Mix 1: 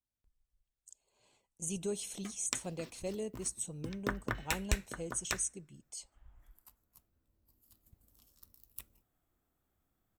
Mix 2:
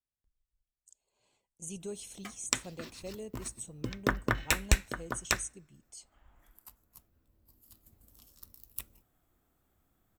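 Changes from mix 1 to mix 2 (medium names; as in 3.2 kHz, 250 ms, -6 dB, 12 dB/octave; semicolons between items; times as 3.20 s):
speech -4.0 dB; background +7.0 dB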